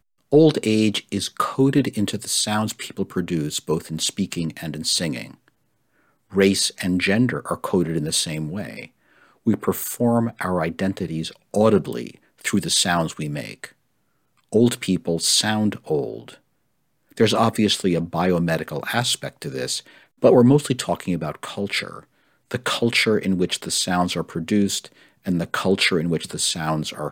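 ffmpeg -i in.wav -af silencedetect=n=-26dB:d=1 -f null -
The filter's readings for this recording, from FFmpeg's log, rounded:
silence_start: 5.24
silence_end: 6.35 | silence_duration: 1.11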